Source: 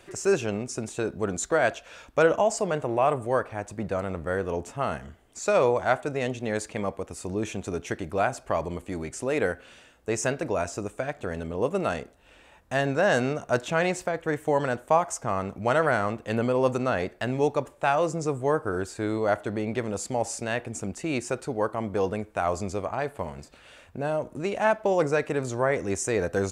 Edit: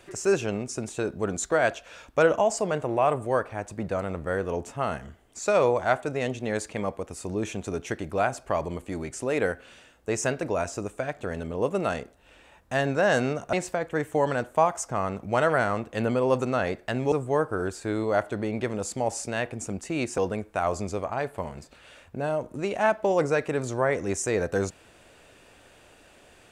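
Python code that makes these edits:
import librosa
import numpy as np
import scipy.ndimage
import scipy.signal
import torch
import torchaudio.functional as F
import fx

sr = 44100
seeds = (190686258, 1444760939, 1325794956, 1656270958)

y = fx.edit(x, sr, fx.cut(start_s=13.53, length_s=0.33),
    fx.cut(start_s=17.45, length_s=0.81),
    fx.cut(start_s=21.32, length_s=0.67), tone=tone)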